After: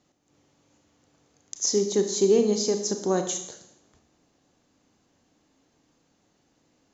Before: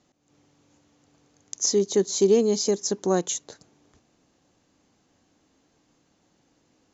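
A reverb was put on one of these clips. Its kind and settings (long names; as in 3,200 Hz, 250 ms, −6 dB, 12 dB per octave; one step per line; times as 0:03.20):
four-comb reverb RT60 0.77 s, combs from 26 ms, DRR 6 dB
level −2 dB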